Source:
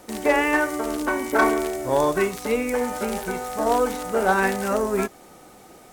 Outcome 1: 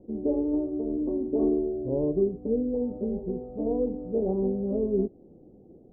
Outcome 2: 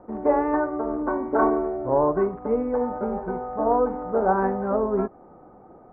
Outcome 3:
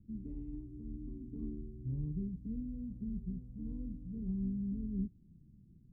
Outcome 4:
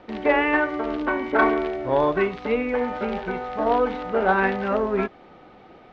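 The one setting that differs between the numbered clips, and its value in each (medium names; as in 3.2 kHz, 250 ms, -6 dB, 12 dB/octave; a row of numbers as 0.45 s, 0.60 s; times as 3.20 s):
inverse Chebyshev low-pass, stop band from: 1.5 kHz, 3.9 kHz, 600 Hz, 10 kHz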